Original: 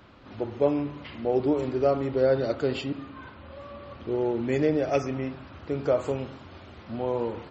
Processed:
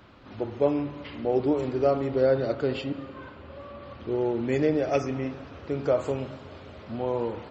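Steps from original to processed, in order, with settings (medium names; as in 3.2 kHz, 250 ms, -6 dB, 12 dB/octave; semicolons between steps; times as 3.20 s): 2.31–3.82 s: distance through air 88 m; plate-style reverb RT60 4.9 s, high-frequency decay 0.95×, DRR 17.5 dB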